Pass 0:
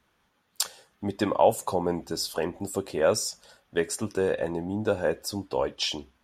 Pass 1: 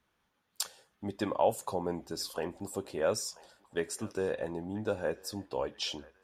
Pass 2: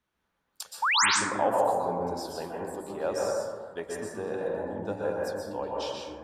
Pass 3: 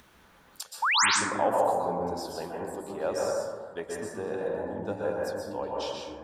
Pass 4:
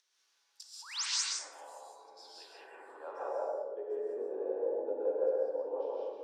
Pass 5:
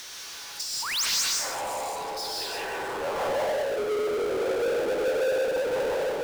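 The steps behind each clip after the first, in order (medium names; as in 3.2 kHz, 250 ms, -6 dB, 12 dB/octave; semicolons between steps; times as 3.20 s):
band-passed feedback delay 985 ms, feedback 54%, band-pass 1.6 kHz, level -19 dB; trim -7 dB
dynamic bell 820 Hz, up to +8 dB, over -47 dBFS, Q 1.4; painted sound rise, 0.82–1.06 s, 800–9500 Hz -19 dBFS; plate-style reverb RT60 1.7 s, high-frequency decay 0.25×, pre-delay 110 ms, DRR -3 dB; trim -5.5 dB
upward compressor, threshold -40 dBFS
ladder high-pass 320 Hz, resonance 40%; band-pass sweep 5.4 kHz -> 490 Hz, 1.99–3.60 s; gated-style reverb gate 220 ms rising, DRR -4.5 dB
power-law waveshaper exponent 0.35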